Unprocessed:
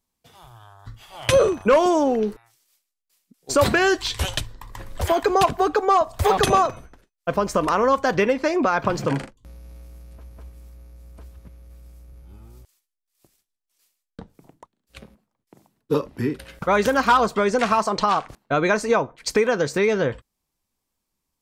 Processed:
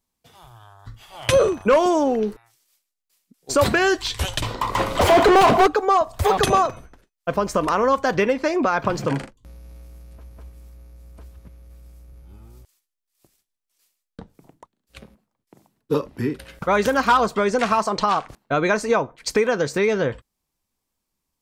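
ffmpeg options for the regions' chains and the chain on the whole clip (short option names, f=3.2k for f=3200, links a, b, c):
-filter_complex "[0:a]asettb=1/sr,asplit=3[a][b][c];[a]atrim=end=4.424[d];[b]atrim=start=4.42:end=5.67,asetpts=PTS-STARTPTS,afade=t=in:d=0.004:c=qsin,afade=t=out:st=1.246:d=0.004:c=qsin,equalizer=f=1.7k:w=6.9:g=-14.5,asplit=2[e][f];[f]highpass=f=720:p=1,volume=35dB,asoftclip=type=tanh:threshold=-6.5dB[g];[e][g]amix=inputs=2:normalize=0,lowpass=f=1.6k:p=1,volume=-6dB,asplit=2[h][i];[i]adelay=34,volume=-13.5dB[j];[h][j]amix=inputs=2:normalize=0,atrim=end_sample=55125[k];[c]atrim=start=5.666[l];[d][k]acrossfade=d=0.004:c1=hsin:c2=qsin[m];[m][l]acrossfade=d=0.004:c1=qsin:c2=hsin"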